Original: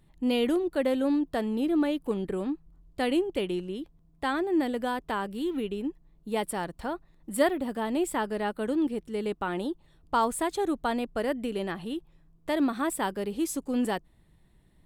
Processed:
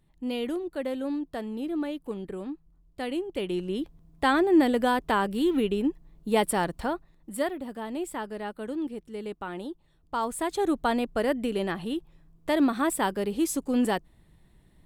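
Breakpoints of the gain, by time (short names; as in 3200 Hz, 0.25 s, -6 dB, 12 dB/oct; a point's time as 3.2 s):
3.22 s -5 dB
3.8 s +6 dB
6.74 s +6 dB
7.45 s -5 dB
10.14 s -5 dB
10.69 s +3 dB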